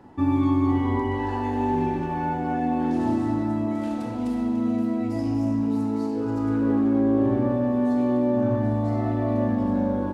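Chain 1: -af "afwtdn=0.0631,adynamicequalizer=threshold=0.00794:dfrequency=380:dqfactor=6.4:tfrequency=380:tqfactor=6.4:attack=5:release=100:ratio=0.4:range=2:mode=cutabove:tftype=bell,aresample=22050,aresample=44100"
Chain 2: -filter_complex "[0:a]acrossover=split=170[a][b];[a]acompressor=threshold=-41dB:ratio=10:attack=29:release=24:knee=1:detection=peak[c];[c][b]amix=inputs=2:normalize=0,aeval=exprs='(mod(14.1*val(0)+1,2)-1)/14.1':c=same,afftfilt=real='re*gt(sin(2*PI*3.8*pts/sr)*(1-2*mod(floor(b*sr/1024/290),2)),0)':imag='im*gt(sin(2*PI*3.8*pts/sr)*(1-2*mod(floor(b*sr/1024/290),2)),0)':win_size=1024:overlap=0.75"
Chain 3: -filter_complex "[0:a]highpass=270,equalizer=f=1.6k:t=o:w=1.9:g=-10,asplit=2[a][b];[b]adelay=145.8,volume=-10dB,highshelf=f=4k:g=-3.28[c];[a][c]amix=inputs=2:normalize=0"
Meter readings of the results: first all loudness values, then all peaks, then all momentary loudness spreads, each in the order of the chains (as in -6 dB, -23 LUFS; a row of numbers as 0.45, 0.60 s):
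-24.5, -30.5, -27.5 LUFS; -12.0, -17.5, -14.5 dBFS; 6, 2, 6 LU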